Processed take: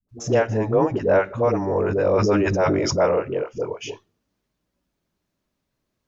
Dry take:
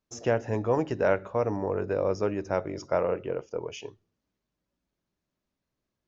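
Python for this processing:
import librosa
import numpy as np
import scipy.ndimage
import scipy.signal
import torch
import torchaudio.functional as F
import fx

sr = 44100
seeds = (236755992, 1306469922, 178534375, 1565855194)

y = fx.high_shelf(x, sr, hz=3500.0, db=-11.0, at=(0.48, 1.15))
y = fx.dispersion(y, sr, late='highs', ms=90.0, hz=390.0)
y = fx.sustainer(y, sr, db_per_s=22.0, at=(1.66, 3.06))
y = y * librosa.db_to_amplitude(7.0)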